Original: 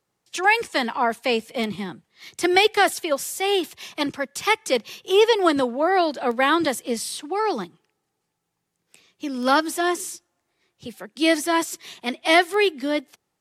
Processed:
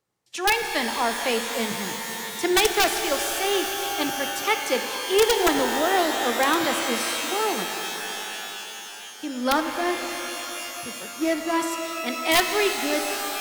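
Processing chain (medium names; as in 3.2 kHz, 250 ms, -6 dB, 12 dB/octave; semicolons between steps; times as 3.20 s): 9.52–11.58 s: median filter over 15 samples; integer overflow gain 7.5 dB; pitch-shifted reverb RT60 3.8 s, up +12 st, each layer -2 dB, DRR 5.5 dB; trim -3.5 dB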